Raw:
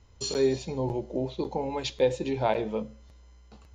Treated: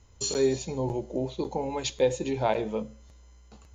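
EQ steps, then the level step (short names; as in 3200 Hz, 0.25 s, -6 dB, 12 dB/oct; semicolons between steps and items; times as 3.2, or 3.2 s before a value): bell 6700 Hz +10.5 dB 0.22 oct; 0.0 dB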